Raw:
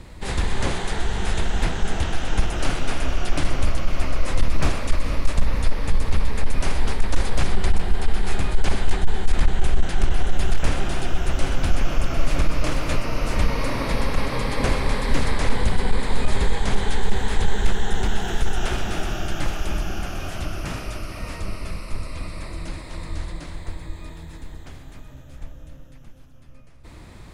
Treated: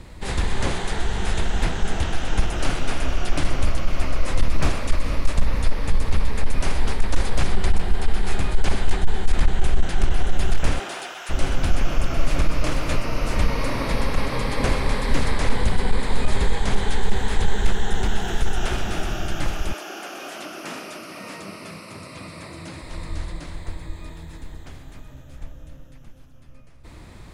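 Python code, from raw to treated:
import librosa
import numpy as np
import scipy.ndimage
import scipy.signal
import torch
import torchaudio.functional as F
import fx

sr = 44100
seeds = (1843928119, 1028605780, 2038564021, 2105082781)

y = fx.highpass(x, sr, hz=fx.line((10.78, 340.0), (11.29, 1000.0)), slope=12, at=(10.78, 11.29), fade=0.02)
y = fx.highpass(y, sr, hz=fx.line((19.72, 350.0), (22.81, 86.0)), slope=24, at=(19.72, 22.81), fade=0.02)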